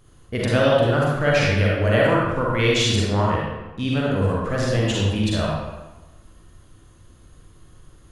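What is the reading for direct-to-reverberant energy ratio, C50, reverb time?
-5.0 dB, -2.5 dB, 1.1 s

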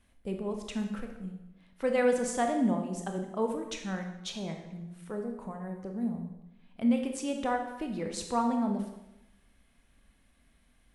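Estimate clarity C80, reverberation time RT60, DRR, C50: 9.0 dB, 0.90 s, 3.5 dB, 6.0 dB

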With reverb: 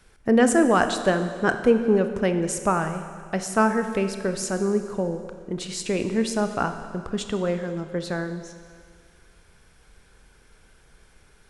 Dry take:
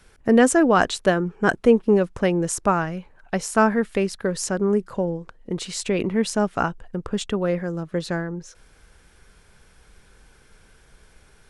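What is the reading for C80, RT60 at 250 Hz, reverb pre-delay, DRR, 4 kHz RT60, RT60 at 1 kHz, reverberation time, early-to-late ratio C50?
10.0 dB, 1.9 s, 27 ms, 7.5 dB, 1.9 s, 1.9 s, 2.0 s, 9.0 dB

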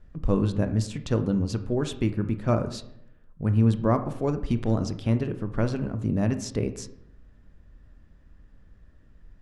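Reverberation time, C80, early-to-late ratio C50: 0.75 s, 15.0 dB, 12.5 dB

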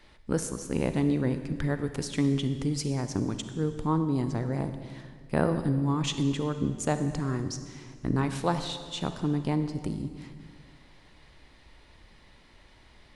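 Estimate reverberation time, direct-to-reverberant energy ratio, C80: 1.8 s, 9.0 dB, 10.5 dB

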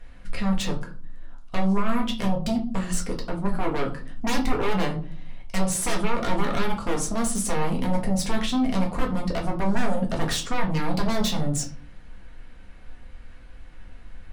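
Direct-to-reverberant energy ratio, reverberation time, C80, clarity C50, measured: -0.5 dB, 0.45 s, 16.5 dB, 11.0 dB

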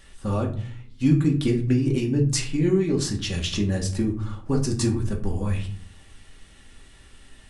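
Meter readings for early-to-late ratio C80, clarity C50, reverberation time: 15.0 dB, 10.5 dB, 0.50 s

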